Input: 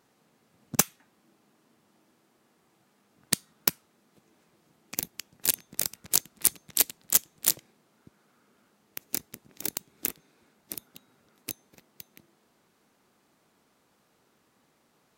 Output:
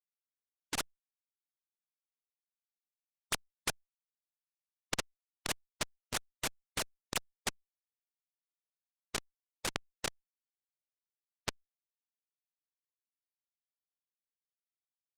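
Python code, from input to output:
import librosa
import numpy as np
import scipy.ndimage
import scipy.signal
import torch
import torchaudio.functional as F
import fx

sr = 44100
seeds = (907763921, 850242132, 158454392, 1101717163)

y = fx.sine_speech(x, sr)
y = fx.vibrato(y, sr, rate_hz=0.55, depth_cents=42.0)
y = fx.schmitt(y, sr, flips_db=-21.0)
y = fx.air_absorb(y, sr, metres=69.0)
y = fx.spectral_comp(y, sr, ratio=4.0)
y = y * 10.0 ** (16.0 / 20.0)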